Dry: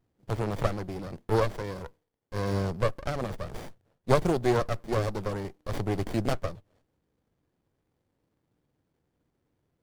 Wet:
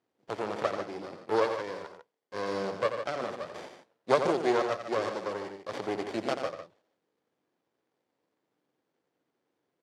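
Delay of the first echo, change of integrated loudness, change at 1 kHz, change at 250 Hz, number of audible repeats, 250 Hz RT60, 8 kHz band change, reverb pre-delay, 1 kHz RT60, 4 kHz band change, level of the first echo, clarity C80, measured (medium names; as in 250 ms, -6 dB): 87 ms, -1.5 dB, +1.0 dB, -4.0 dB, 2, no reverb, -3.5 dB, no reverb, no reverb, +0.5 dB, -8.5 dB, no reverb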